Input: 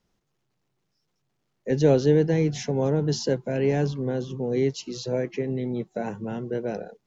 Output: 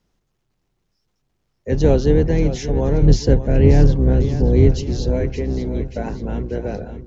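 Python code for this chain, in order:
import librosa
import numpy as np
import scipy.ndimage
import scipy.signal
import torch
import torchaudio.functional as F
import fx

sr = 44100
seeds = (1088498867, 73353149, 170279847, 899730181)

y = fx.octave_divider(x, sr, octaves=2, level_db=3.0)
y = fx.low_shelf(y, sr, hz=320.0, db=9.0, at=(3.02, 5.12))
y = fx.echo_feedback(y, sr, ms=581, feedback_pct=51, wet_db=-11.5)
y = fx.doppler_dist(y, sr, depth_ms=0.13)
y = y * 10.0 ** (2.5 / 20.0)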